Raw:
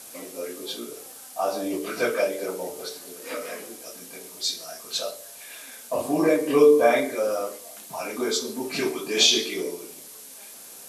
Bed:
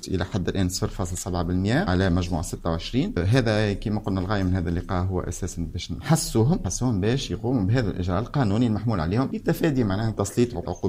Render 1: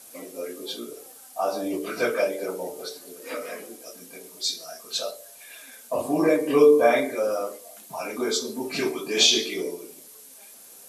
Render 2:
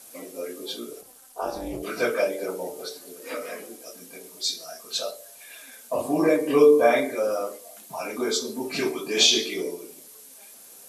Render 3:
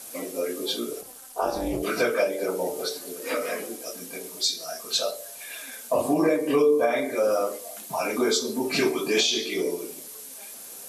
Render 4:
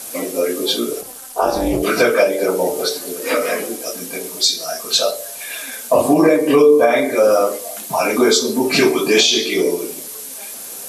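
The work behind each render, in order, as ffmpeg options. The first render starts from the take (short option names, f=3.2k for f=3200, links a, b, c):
-af "afftdn=nr=6:nf=-44"
-filter_complex "[0:a]asettb=1/sr,asplit=3[a][b][c];[a]atrim=end=1.014[d];[b]atrim=start=1.01:end=1.83,asetpts=PTS-STARTPTS,afade=t=in:d=0.004:c=qsin,afade=t=out:st=0.816:d=0.004:c=qsin,tremolo=f=240:d=0.919[e];[c]atrim=start=1.826[f];[d][e]acrossfade=d=0.004:c1=hsin:c2=qsin[g];[g][f]acrossfade=d=0.004:c1=qsin:c2=hsin"
-filter_complex "[0:a]asplit=2[a][b];[b]acompressor=threshold=-30dB:ratio=6,volume=0dB[c];[a][c]amix=inputs=2:normalize=0,alimiter=limit=-12dB:level=0:latency=1:release=440"
-af "volume=10dB,alimiter=limit=-3dB:level=0:latency=1"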